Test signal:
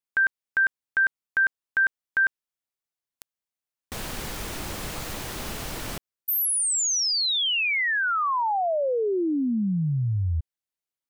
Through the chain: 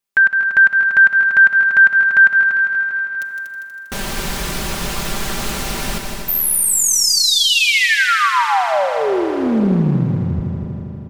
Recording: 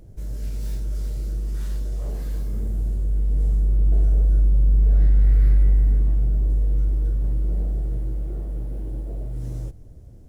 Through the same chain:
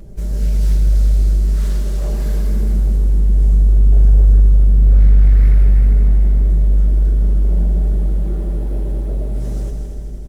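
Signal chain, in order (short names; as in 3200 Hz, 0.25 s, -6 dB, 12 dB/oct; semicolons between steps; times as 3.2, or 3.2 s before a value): comb 5.1 ms, depth 65%; on a send: multi-head echo 80 ms, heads second and third, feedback 57%, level -8.5 dB; on the sum: Schroeder reverb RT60 3.5 s, combs from 31 ms, DRR 12.5 dB; in parallel at -3 dB: compressor, threshold -22 dBFS; on the sum: dynamic EQ 460 Hz, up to -4 dB, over -33 dBFS, Q 1.2; Doppler distortion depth 0.54 ms; gain +3.5 dB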